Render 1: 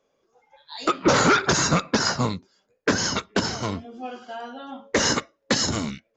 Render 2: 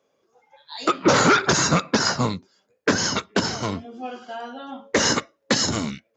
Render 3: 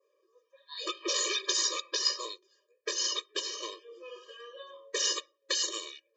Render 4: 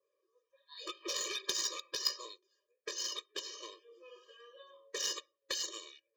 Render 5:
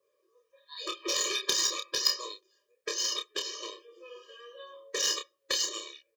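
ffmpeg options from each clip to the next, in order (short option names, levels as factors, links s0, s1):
-af "highpass=82,volume=1.19"
-filter_complex "[0:a]adynamicequalizer=threshold=0.0112:dfrequency=3100:dqfactor=1.4:tfrequency=3100:tqfactor=1.4:attack=5:release=100:ratio=0.375:range=3:mode=boostabove:tftype=bell,acrossover=split=150|3000[s0][s1][s2];[s1]acompressor=threshold=0.0178:ratio=3[s3];[s0][s3][s2]amix=inputs=3:normalize=0,afftfilt=real='re*eq(mod(floor(b*sr/1024/320),2),1)':imag='im*eq(mod(floor(b*sr/1024/320),2),1)':win_size=1024:overlap=0.75,volume=0.708"
-af "aeval=exprs='0.211*(cos(1*acos(clip(val(0)/0.211,-1,1)))-cos(1*PI/2))+0.0422*(cos(3*acos(clip(val(0)/0.211,-1,1)))-cos(3*PI/2))+0.0015*(cos(7*acos(clip(val(0)/0.211,-1,1)))-cos(7*PI/2))':c=same"
-filter_complex "[0:a]asplit=2[s0][s1];[s1]adelay=29,volume=0.531[s2];[s0][s2]amix=inputs=2:normalize=0,volume=2.11"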